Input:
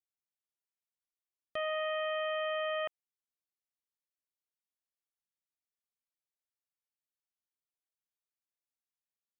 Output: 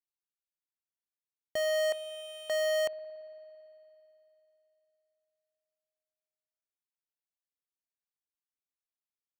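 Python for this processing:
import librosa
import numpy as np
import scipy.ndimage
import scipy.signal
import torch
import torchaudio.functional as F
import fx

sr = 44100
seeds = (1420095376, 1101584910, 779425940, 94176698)

y = fx.cheby2_highpass(x, sr, hz=2300.0, order=4, stop_db=40, at=(1.92, 2.5))
y = fx.leveller(y, sr, passes=5)
y = fx.rev_spring(y, sr, rt60_s=3.3, pass_ms=(56,), chirp_ms=25, drr_db=17.0)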